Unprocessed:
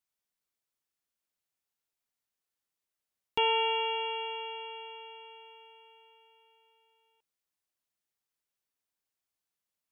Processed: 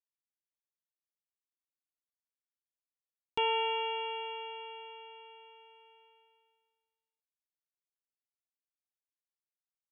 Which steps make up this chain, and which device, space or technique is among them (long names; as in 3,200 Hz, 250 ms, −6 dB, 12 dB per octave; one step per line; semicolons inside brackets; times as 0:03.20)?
hearing-loss simulation (low-pass filter 3,500 Hz; downward expander −59 dBFS)
level −2.5 dB